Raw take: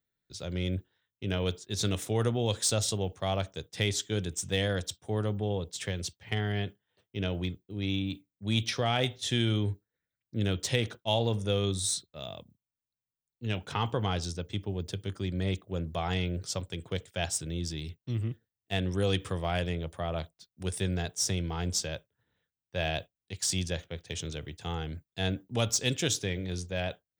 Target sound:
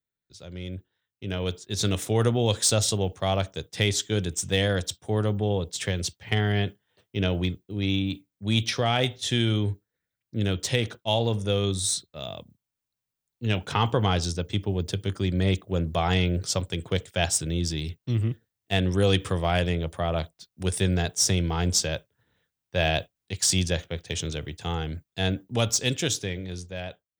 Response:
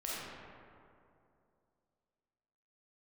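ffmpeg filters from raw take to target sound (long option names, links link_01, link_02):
-af "dynaudnorm=framelen=450:gausssize=7:maxgain=14dB,volume=-5.5dB"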